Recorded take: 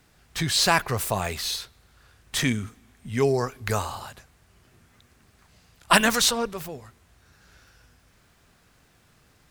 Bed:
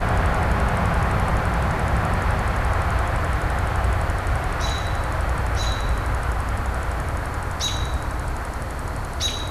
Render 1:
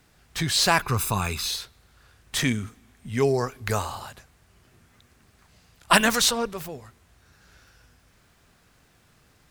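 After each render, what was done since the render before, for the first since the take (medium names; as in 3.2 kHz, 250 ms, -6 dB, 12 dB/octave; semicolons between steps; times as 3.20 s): 0.82–1.47 s: comb 0.8 ms, depth 64%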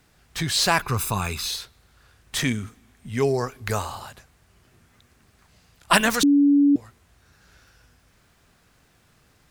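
6.23–6.76 s: bleep 285 Hz -13 dBFS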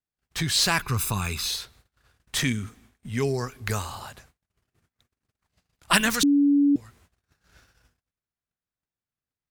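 gate -54 dBFS, range -36 dB; dynamic bell 650 Hz, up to -8 dB, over -36 dBFS, Q 0.78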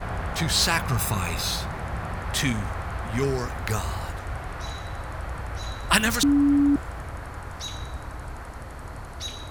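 add bed -10 dB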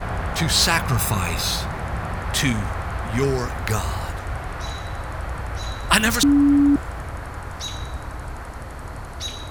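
trim +4 dB; peak limiter -2 dBFS, peak gain reduction 2.5 dB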